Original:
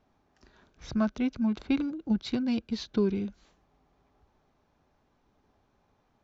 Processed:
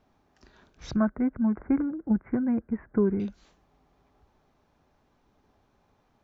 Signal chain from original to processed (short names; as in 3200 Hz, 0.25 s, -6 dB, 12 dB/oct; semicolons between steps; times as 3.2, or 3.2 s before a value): 0.96–3.2 steep low-pass 2000 Hz 72 dB/oct; gain +2.5 dB